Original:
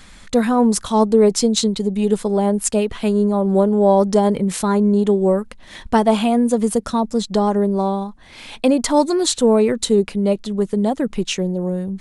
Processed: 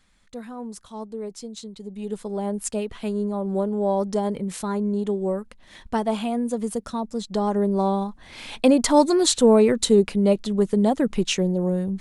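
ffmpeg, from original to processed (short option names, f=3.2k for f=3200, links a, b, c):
-af "volume=-1dB,afade=t=in:st=1.68:d=0.87:silence=0.281838,afade=t=in:st=7.22:d=0.83:silence=0.398107"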